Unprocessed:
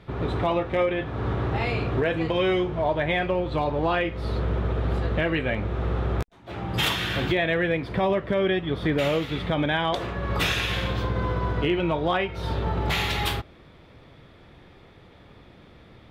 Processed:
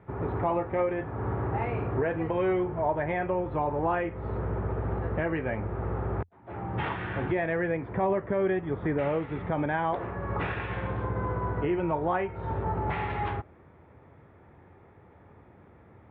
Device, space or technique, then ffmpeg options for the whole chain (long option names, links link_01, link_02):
bass cabinet: -af "highpass=69,equalizer=frequency=88:width_type=q:width=4:gain=8,equalizer=frequency=400:width_type=q:width=4:gain=3,equalizer=frequency=870:width_type=q:width=4:gain=6,lowpass=frequency=2000:width=0.5412,lowpass=frequency=2000:width=1.3066,volume=-5dB"